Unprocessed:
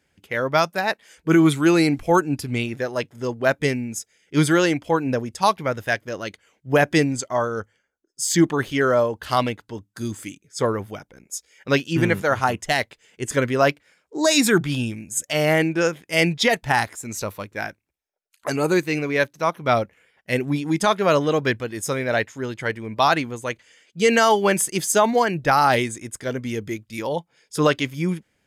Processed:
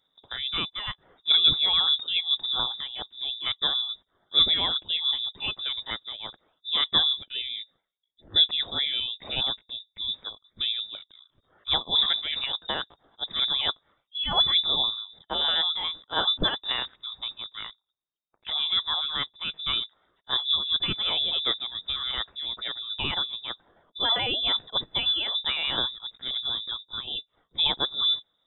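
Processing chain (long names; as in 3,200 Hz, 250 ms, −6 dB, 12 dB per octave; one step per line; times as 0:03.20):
pitch shifter gated in a rhythm +1.5 semitones, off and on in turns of 72 ms
flat-topped bell 910 Hz −15 dB 2.7 octaves
voice inversion scrambler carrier 3,700 Hz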